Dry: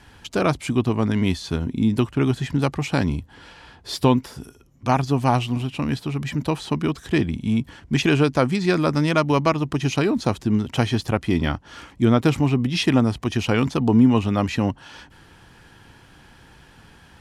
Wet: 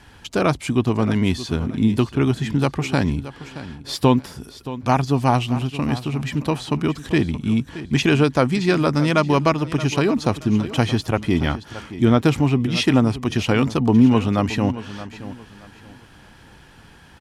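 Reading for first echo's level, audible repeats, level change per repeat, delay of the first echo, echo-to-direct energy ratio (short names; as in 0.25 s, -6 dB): -14.5 dB, 2, -11.5 dB, 0.624 s, -14.0 dB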